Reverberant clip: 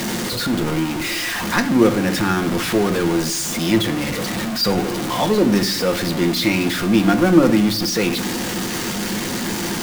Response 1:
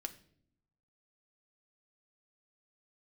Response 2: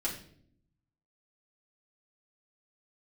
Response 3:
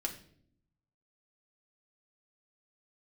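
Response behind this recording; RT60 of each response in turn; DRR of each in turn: 1; not exponential, 0.60 s, 0.60 s; 7.0, -6.5, 1.0 dB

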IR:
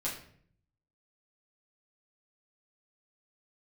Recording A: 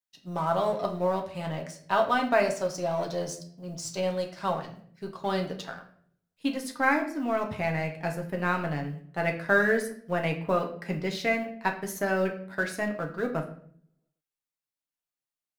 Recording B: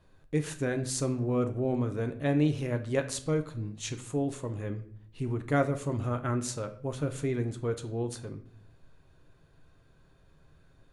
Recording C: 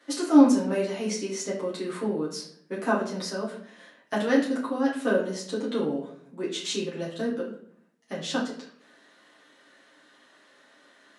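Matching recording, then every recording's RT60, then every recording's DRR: C; 0.60, 0.60, 0.60 s; 2.0, 6.5, -7.5 dB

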